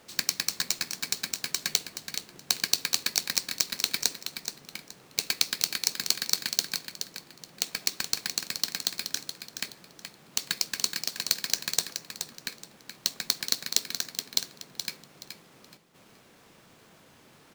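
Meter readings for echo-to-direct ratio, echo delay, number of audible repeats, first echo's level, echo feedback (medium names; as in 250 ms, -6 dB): -8.0 dB, 424 ms, 3, -8.5 dB, 26%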